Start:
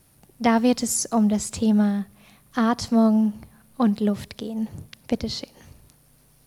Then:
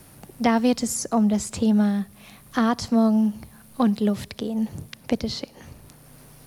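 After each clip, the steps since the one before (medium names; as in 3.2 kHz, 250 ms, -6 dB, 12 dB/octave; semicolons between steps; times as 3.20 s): three bands compressed up and down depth 40%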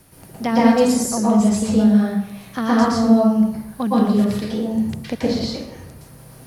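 plate-style reverb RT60 0.84 s, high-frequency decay 0.6×, pre-delay 105 ms, DRR -7 dB; trim -3 dB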